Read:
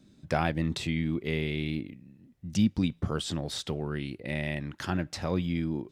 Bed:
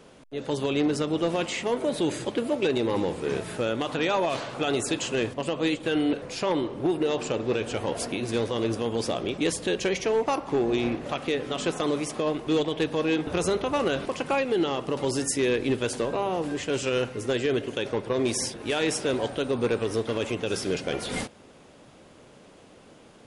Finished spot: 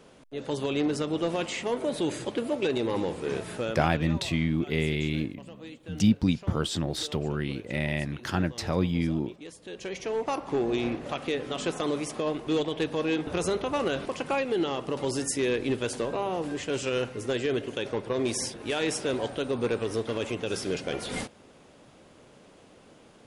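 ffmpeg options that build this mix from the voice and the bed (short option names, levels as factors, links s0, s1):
-filter_complex "[0:a]adelay=3450,volume=1.41[s0];[1:a]volume=4.73,afade=t=out:st=3.54:d=0.6:silence=0.158489,afade=t=in:st=9.61:d=0.85:silence=0.158489[s1];[s0][s1]amix=inputs=2:normalize=0"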